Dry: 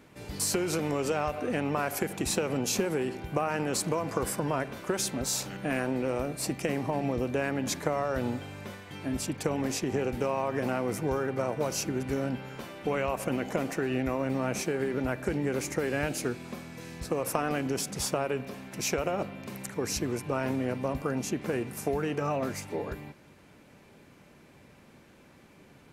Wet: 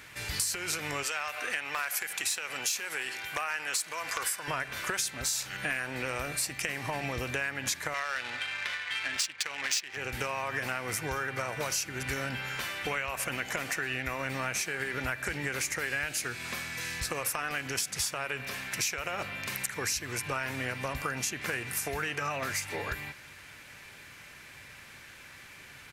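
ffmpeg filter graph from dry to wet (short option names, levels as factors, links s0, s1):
-filter_complex "[0:a]asettb=1/sr,asplit=3[s0][s1][s2];[s0]atrim=end=1.034[s3];[s1]atrim=start=1.03:end=4.48,asetpts=PTS-STARTPTS,afade=t=in:d=0.004:c=qsin,afade=t=out:st=3.446:d=0.004:c=qsin,highpass=f=910:p=1,aeval=exprs='0.0794*(abs(mod(val(0)/0.0794+3,4)-2)-1)':c=same[s4];[s2]atrim=start=4.476[s5];[s3][s4]acrossfade=d=0.004:c1=hsin:c2=qsin[s6];[s6][s5]acrossfade=d=0.004:c1=qsin:c2=hsin,asettb=1/sr,asplit=3[s7][s8][s9];[s7]atrim=end=7.944[s10];[s8]atrim=start=7.94:end=9.97,asetpts=PTS-STARTPTS,afade=t=in:d=0.004:c=qsin,afade=t=out:st=2.026:d=0.004:c=qsin,highpass=f=770:p=1,equalizer=f=4800:w=0.43:g=14,adynamicsmooth=sensitivity=4.5:basefreq=1400[s11];[s9]atrim=start=9.966[s12];[s10][s11]acrossfade=d=0.004:c1=hsin:c2=qsin[s13];[s13][s12]acrossfade=d=0.004:c1=qsin:c2=hsin,firequalizer=gain_entry='entry(110,0);entry(190,-10);entry(1700,12);entry(3000,10)':delay=0.05:min_phase=1,acompressor=threshold=0.0251:ratio=6,volume=1.33"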